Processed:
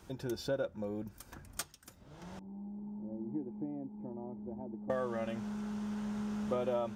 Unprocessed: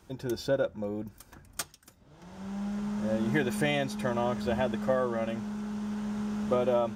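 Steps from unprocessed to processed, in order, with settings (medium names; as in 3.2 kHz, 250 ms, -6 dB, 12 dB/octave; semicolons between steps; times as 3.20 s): 2.39–4.90 s: cascade formant filter u; compression 1.5:1, threshold -48 dBFS, peak gain reduction 9 dB; trim +1.5 dB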